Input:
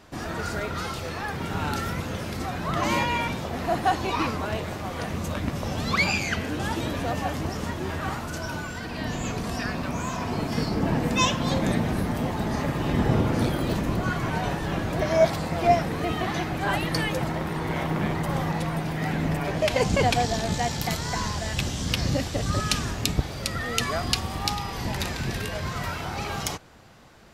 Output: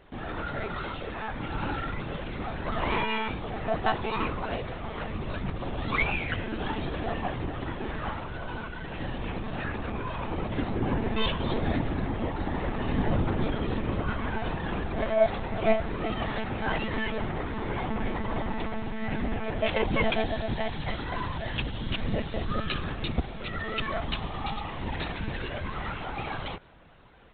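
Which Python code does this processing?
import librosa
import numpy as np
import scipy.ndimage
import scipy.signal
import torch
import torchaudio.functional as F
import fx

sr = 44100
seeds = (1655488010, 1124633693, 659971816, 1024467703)

y = fx.lpc_monotone(x, sr, seeds[0], pitch_hz=220.0, order=16)
y = y * librosa.db_to_amplitude(-3.0)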